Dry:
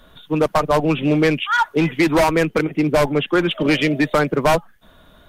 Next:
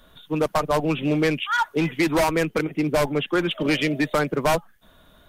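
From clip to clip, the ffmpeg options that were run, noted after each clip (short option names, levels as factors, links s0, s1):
-af "highshelf=f=5300:g=5.5,volume=0.562"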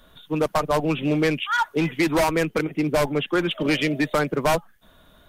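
-af anull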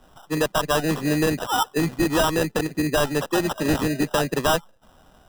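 -af "acrusher=samples=20:mix=1:aa=0.000001"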